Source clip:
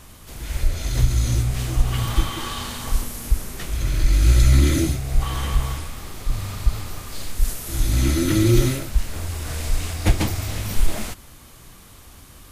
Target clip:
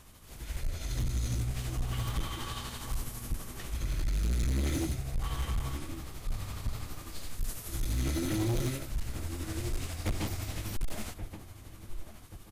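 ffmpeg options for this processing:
-filter_complex "[0:a]asplit=2[a][b];[b]adelay=1128,lowpass=f=1.6k:p=1,volume=-12.5dB,asplit=2[c][d];[d]adelay=1128,lowpass=f=1.6k:p=1,volume=0.35,asplit=2[e][f];[f]adelay=1128,lowpass=f=1.6k:p=1,volume=0.35,asplit=2[g][h];[h]adelay=1128,lowpass=f=1.6k:p=1,volume=0.35[i];[a][c][e][g][i]amix=inputs=5:normalize=0,tremolo=f=12:d=0.41,volume=18dB,asoftclip=hard,volume=-18dB,volume=-8.5dB"

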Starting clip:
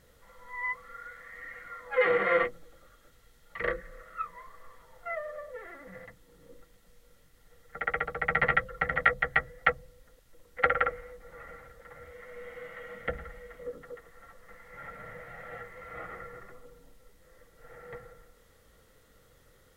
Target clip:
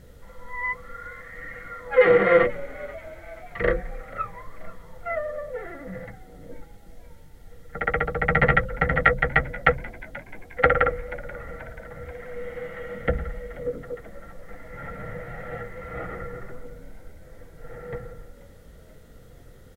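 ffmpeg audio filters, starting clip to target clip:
-filter_complex "[0:a]lowshelf=f=500:g=11.5,bandreject=f=1.1k:w=10,asplit=2[a][b];[b]asplit=4[c][d][e][f];[c]adelay=483,afreqshift=73,volume=-20dB[g];[d]adelay=966,afreqshift=146,volume=-25.4dB[h];[e]adelay=1449,afreqshift=219,volume=-30.7dB[i];[f]adelay=1932,afreqshift=292,volume=-36.1dB[j];[g][h][i][j]amix=inputs=4:normalize=0[k];[a][k]amix=inputs=2:normalize=0,volume=4dB"

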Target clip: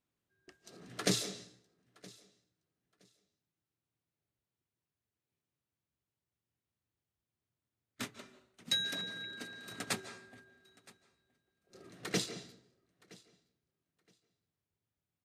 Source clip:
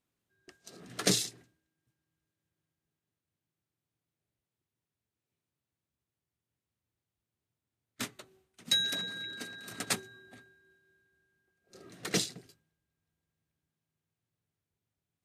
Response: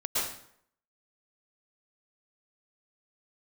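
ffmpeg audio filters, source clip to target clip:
-filter_complex "[0:a]highshelf=f=5.4k:g=-5.5,aecho=1:1:969|1938:0.0708|0.0142,asplit=2[a][b];[1:a]atrim=start_sample=2205,lowpass=7.3k,adelay=32[c];[b][c]afir=irnorm=-1:irlink=0,volume=-19.5dB[d];[a][d]amix=inputs=2:normalize=0,volume=-2.5dB"

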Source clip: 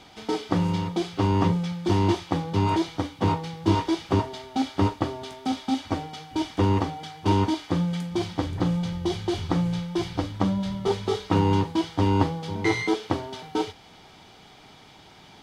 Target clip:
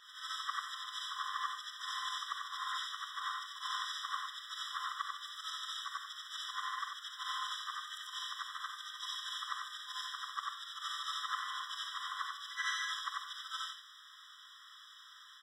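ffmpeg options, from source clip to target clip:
-filter_complex "[0:a]afftfilt=real='re':imag='-im':win_size=8192:overlap=0.75,equalizer=f=120:t=o:w=2.3:g=-14,bandreject=f=139.3:t=h:w=4,bandreject=f=278.6:t=h:w=4,asplit=2[a][b];[b]asetrate=35002,aresample=44100,atempo=1.25992,volume=-9dB[c];[a][c]amix=inputs=2:normalize=0,afftfilt=real='re*eq(mod(floor(b*sr/1024/1000),2),1)':imag='im*eq(mod(floor(b*sr/1024/1000),2),1)':win_size=1024:overlap=0.75,volume=4dB"

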